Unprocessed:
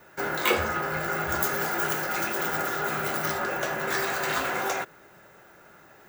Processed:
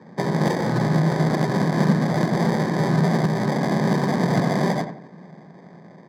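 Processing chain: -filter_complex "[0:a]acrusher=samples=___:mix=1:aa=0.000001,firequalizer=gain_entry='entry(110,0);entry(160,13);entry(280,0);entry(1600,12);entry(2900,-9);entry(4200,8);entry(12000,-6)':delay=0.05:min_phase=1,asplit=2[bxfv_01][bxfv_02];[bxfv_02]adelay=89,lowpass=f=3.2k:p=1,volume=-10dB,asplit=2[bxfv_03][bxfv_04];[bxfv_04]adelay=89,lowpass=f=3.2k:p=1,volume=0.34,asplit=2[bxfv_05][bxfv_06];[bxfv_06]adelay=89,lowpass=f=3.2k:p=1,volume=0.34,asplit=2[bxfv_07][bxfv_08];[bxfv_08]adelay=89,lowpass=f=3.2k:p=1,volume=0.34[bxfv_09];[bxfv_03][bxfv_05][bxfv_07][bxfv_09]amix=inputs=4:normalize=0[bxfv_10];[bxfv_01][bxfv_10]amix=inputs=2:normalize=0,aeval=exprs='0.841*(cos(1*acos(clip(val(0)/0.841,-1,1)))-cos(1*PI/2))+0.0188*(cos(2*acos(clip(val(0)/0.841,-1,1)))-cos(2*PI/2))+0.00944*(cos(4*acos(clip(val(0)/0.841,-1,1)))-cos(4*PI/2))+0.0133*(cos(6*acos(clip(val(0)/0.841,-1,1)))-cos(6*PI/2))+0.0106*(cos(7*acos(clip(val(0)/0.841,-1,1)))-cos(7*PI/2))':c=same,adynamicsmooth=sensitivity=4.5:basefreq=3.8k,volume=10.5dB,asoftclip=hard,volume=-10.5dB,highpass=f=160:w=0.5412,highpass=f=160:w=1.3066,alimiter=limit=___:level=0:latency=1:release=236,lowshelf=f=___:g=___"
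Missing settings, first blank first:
32, -13dB, 360, 11.5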